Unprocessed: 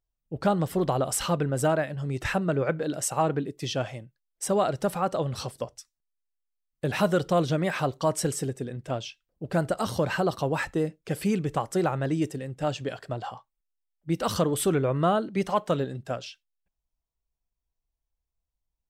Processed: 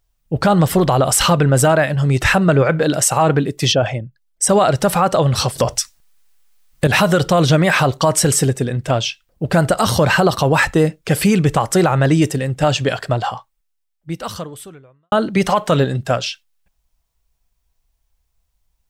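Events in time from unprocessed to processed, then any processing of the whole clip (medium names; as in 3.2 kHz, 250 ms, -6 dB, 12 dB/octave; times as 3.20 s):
3.72–4.49 s: resonances exaggerated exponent 1.5
5.56–6.87 s: gain +11.5 dB
13.09–15.12 s: fade out quadratic
whole clip: peaking EQ 330 Hz -5.5 dB 1.8 oct; loudness maximiser +21.5 dB; trim -4 dB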